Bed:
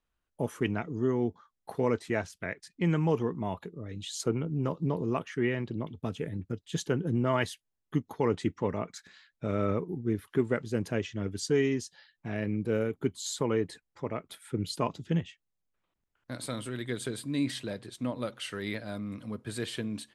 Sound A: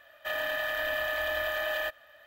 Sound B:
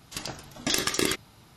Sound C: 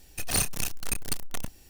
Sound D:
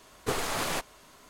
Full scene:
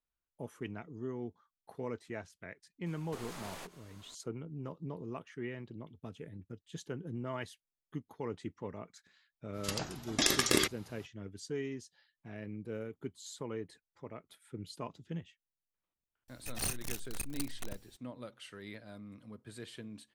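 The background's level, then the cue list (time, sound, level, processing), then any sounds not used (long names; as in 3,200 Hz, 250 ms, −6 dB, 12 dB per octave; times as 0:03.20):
bed −12 dB
0:02.86: mix in D −6.5 dB + downward compressor 3 to 1, threshold −39 dBFS
0:09.52: mix in B −2.5 dB, fades 0.05 s
0:16.28: mix in C −10 dB
not used: A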